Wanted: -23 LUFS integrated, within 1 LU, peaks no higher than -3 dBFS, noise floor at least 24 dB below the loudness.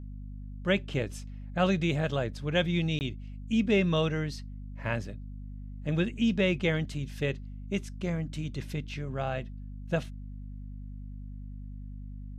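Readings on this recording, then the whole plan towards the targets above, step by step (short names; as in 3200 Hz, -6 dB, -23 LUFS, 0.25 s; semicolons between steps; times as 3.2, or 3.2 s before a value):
dropouts 1; longest dropout 19 ms; hum 50 Hz; harmonics up to 250 Hz; hum level -39 dBFS; loudness -30.5 LUFS; peak -14.0 dBFS; loudness target -23.0 LUFS
-> interpolate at 2.99, 19 ms; notches 50/100/150/200/250 Hz; gain +7.5 dB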